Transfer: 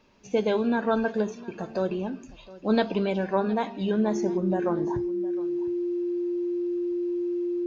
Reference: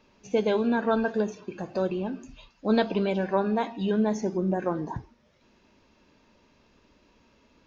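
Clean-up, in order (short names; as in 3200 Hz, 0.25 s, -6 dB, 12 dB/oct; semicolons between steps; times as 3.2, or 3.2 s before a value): notch 350 Hz, Q 30; inverse comb 0.711 s -19 dB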